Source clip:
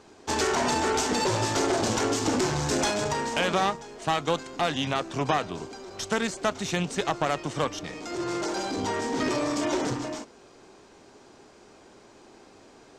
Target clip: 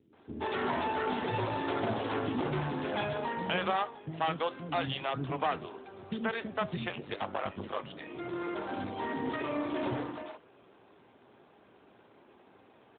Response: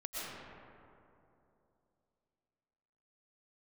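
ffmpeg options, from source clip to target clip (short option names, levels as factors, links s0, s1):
-filter_complex "[0:a]asettb=1/sr,asplit=3[s0][s1][s2];[s0]atrim=end=6.764[s3];[s1]atrim=start=6.76:end=7.86,asetpts=PTS-STARTPTS,afade=t=in:d=0.004:c=qsin,afade=t=out:st=1.096:d=0.004:c=qsin,aeval=exprs='val(0)*sin(2*PI*50*n/s)':c=same[s4];[s2]atrim=start=7.856[s5];[s3][s4]acrossfade=d=0.004:c1=hsin:c2=qsin[s6];[s6][s5]acrossfade=d=0.004:c1=qsin:c2=hsin,acrossover=split=350[s7][s8];[s8]adelay=130[s9];[s7][s9]amix=inputs=2:normalize=0,flanger=delay=6.5:depth=5.6:regen=-81:speed=0.37:shape=triangular" -ar 8000 -c:a libopencore_amrnb -b:a 12200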